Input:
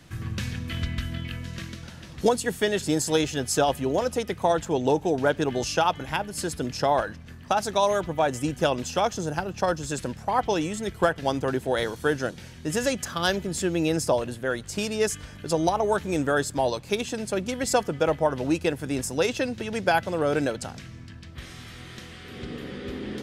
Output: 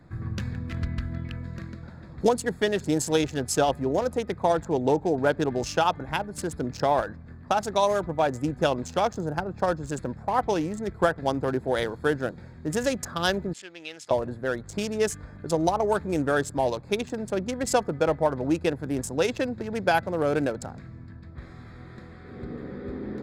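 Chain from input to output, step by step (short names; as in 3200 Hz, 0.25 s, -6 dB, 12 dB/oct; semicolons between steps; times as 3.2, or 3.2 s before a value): Wiener smoothing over 15 samples; 13.53–14.11 band-pass 2900 Hz, Q 1.4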